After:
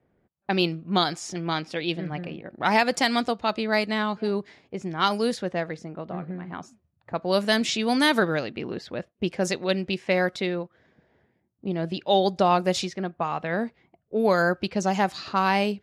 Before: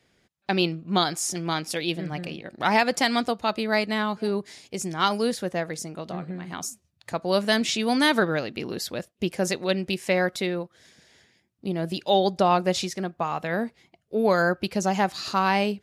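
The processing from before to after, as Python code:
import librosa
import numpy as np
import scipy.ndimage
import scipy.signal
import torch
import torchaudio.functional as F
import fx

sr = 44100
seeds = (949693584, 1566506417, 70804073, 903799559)

y = fx.env_lowpass(x, sr, base_hz=960.0, full_db=-18.5)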